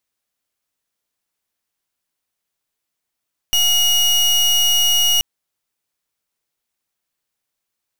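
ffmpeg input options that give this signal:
ffmpeg -f lavfi -i "aevalsrc='0.178*(2*lt(mod(2890*t,1),0.3)-1)':duration=1.68:sample_rate=44100" out.wav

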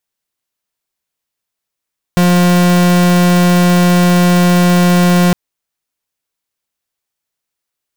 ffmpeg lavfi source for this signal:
ffmpeg -f lavfi -i "aevalsrc='0.355*(2*lt(mod(177*t,1),0.42)-1)':duration=3.16:sample_rate=44100" out.wav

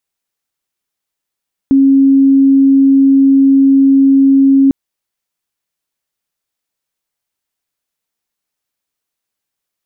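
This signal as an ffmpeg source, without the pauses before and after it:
ffmpeg -f lavfi -i "aevalsrc='0.596*sin(2*PI*272*t)':duration=3:sample_rate=44100" out.wav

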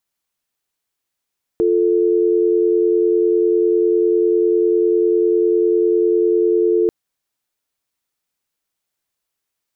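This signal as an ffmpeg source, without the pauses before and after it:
ffmpeg -f lavfi -i "aevalsrc='0.178*(sin(2*PI*350*t)+sin(2*PI*440*t))':duration=5.29:sample_rate=44100" out.wav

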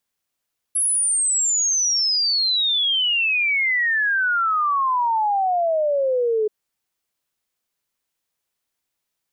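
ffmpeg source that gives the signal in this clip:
ffmpeg -f lavfi -i "aevalsrc='0.141*clip(min(t,5.73-t)/0.01,0,1)*sin(2*PI*11000*5.73/log(420/11000)*(exp(log(420/11000)*t/5.73)-1))':duration=5.73:sample_rate=44100" out.wav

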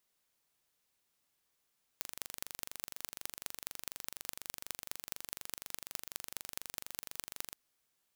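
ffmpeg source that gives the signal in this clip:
ffmpeg -f lavfi -i "aevalsrc='0.335*eq(mod(n,1830),0)*(0.5+0.5*eq(mod(n,9150),0))':duration=5.53:sample_rate=44100" out.wav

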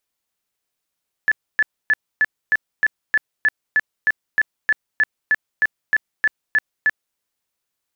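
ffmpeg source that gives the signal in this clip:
ffmpeg -f lavfi -i "aevalsrc='0.251*sin(2*PI*1730*mod(t,0.31))*lt(mod(t,0.31),62/1730)':duration=5.89:sample_rate=44100" out.wav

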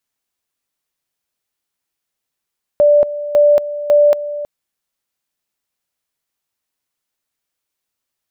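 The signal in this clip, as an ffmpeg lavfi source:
ffmpeg -f lavfi -i "aevalsrc='pow(10,(-6.5-14*gte(mod(t,0.55),0.23))/20)*sin(2*PI*587*t)':duration=1.65:sample_rate=44100" out.wav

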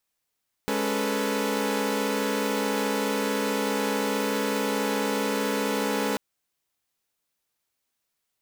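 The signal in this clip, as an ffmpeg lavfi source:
ffmpeg -f lavfi -i "aevalsrc='0.0422*((2*mod(207.65*t,1)-1)+(2*mod(277.18*t,1)-1)+(2*mod(440*t,1)-1)+(2*mod(493.88*t,1)-1))':duration=5.49:sample_rate=44100" out.wav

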